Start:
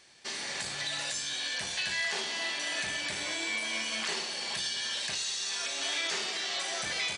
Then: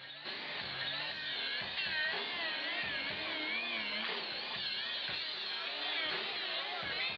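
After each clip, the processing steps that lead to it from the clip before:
tape wow and flutter 120 cents
Chebyshev low-pass filter 4,300 Hz, order 6
backwards echo 774 ms −10 dB
level −3 dB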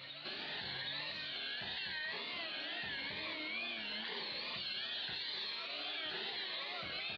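brickwall limiter −33 dBFS, peak gain reduction 9.5 dB
phaser whose notches keep moving one way rising 0.89 Hz
level +1.5 dB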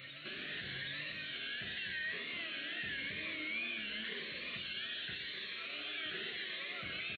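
phaser with its sweep stopped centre 2,100 Hz, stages 4
single-tap delay 117 ms −10.5 dB
level +3 dB

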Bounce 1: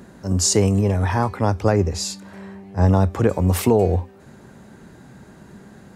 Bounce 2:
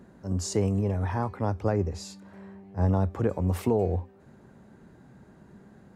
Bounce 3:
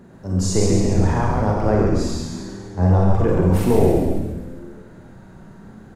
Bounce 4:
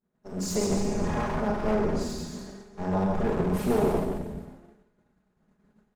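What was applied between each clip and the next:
high-shelf EQ 2,200 Hz −9 dB; level −8 dB
echo with shifted repeats 135 ms, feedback 57%, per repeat −87 Hz, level −3 dB; convolution reverb RT60 0.70 s, pre-delay 33 ms, DRR 0 dB; level +5 dB
lower of the sound and its delayed copy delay 4.8 ms; downward expander −31 dBFS; level −7 dB

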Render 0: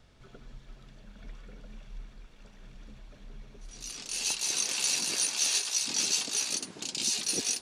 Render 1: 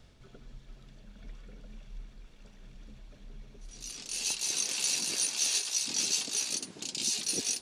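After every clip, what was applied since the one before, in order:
parametric band 1,200 Hz −4 dB 2 octaves
reversed playback
upward compression, threshold −48 dBFS
reversed playback
level −1 dB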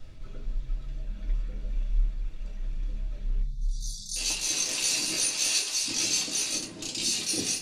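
time-frequency box erased 0:03.42–0:04.16, 230–3,400 Hz
low-shelf EQ 78 Hz +8.5 dB
convolution reverb RT60 0.30 s, pre-delay 3 ms, DRR −3.5 dB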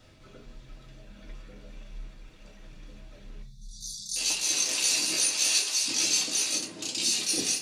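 high-pass filter 250 Hz 6 dB per octave
level +1.5 dB

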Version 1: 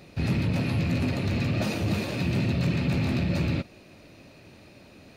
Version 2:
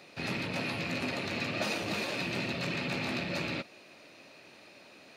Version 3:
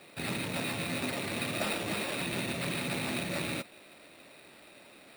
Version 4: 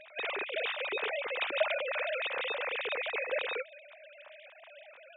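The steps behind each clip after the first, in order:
meter weighting curve A
decimation without filtering 7×
three sine waves on the formant tracks

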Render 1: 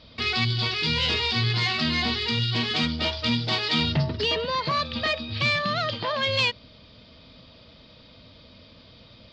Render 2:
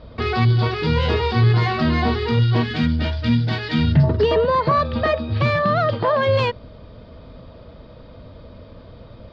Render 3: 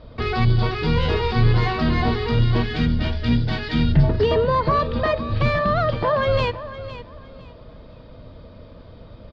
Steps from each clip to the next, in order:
flat-topped bell 800 Hz +8.5 dB 2.6 octaves; gain on a spectral selection 0:02.63–0:04.04, 320–1,400 Hz −10 dB; spectral tilt −3.5 dB per octave
sub-octave generator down 2 octaves, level −4 dB; repeating echo 509 ms, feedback 25%, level −14 dB; on a send at −22 dB: convolution reverb RT60 1.3 s, pre-delay 7 ms; on the sum: level −2 dB

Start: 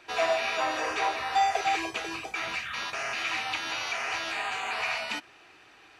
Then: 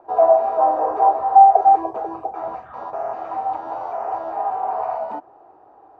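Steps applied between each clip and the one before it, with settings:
drawn EQ curve 200 Hz 0 dB, 810 Hz +15 dB, 2,400 Hz −29 dB
level +1 dB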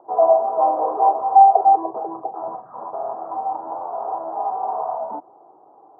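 elliptic band-pass filter 140–1,100 Hz, stop band 50 dB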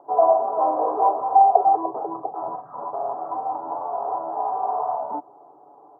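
comb filter 7 ms, depth 42%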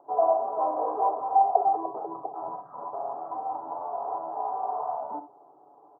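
ambience of single reflections 62 ms −14.5 dB, 72 ms −15.5 dB
level −6 dB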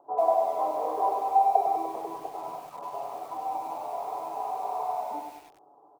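feedback echo at a low word length 98 ms, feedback 55%, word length 8 bits, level −5 dB
level −2 dB

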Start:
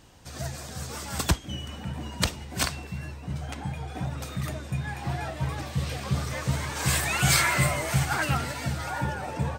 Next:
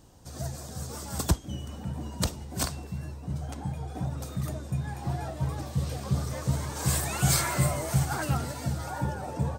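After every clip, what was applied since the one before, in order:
parametric band 2,300 Hz −11.5 dB 1.7 octaves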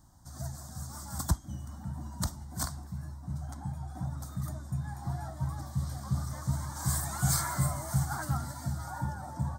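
phaser with its sweep stopped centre 1,100 Hz, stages 4
level −2.5 dB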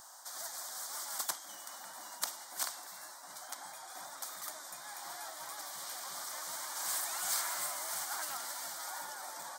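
high-pass filter 690 Hz 24 dB per octave
every bin compressed towards the loudest bin 2 to 1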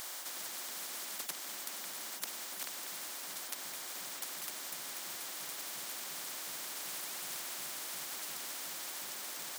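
high-pass filter 520 Hz 12 dB per octave
every bin compressed towards the loudest bin 10 to 1
level −4.5 dB

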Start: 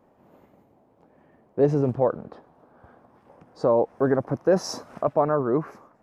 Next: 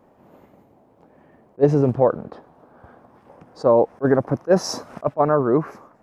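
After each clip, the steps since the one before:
level that may rise only so fast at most 580 dB per second
level +5 dB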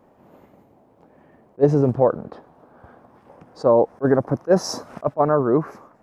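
dynamic equaliser 2,600 Hz, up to −5 dB, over −43 dBFS, Q 1.4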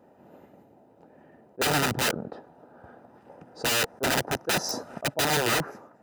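wrap-around overflow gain 17 dB
notch comb filter 1,100 Hz
level −1 dB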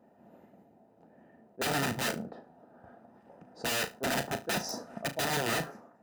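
hollow resonant body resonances 210/680/1,800 Hz, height 7 dB
on a send: flutter between parallel walls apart 6.2 metres, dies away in 0.22 s
on the sum: level −7.5 dB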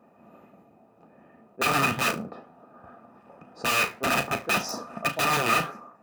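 hollow resonant body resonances 1,200/2,500 Hz, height 18 dB, ringing for 40 ms
flanger 1.9 Hz, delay 4.2 ms, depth 9.7 ms, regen −76%
level +8 dB

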